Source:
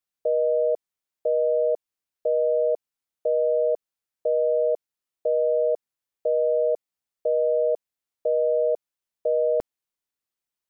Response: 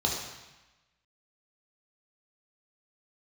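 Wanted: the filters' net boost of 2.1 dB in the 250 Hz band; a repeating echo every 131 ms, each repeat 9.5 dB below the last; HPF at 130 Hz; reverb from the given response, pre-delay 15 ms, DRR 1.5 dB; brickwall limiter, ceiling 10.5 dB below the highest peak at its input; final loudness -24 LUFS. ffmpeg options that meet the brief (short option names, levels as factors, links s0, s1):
-filter_complex "[0:a]highpass=130,equalizer=f=250:t=o:g=4,alimiter=level_in=1.19:limit=0.0631:level=0:latency=1,volume=0.841,aecho=1:1:131|262|393|524:0.335|0.111|0.0365|0.012,asplit=2[s0][s1];[1:a]atrim=start_sample=2205,adelay=15[s2];[s1][s2]afir=irnorm=-1:irlink=0,volume=0.282[s3];[s0][s3]amix=inputs=2:normalize=0,volume=2.37"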